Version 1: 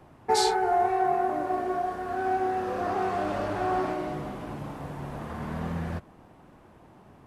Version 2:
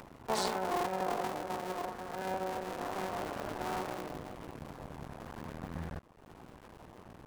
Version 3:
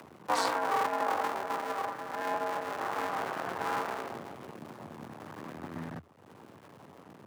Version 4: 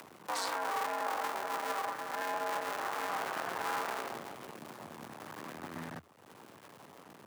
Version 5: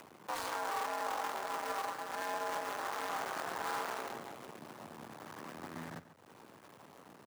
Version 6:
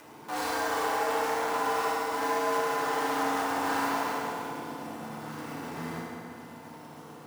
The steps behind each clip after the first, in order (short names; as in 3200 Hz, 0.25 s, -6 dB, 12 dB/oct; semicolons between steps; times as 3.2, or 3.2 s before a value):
cycle switcher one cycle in 2, muted; upward compressor, threshold -34 dBFS; gain -6.5 dB
dynamic EQ 1300 Hz, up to +7 dB, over -48 dBFS, Q 0.72; frequency shift +81 Hz
tilt +2 dB/oct; limiter -25 dBFS, peak gain reduction 9 dB
switching dead time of 0.1 ms; outdoor echo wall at 24 m, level -14 dB; gain -2 dB
FDN reverb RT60 2.8 s, low-frequency decay 1.3×, high-frequency decay 0.7×, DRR -8 dB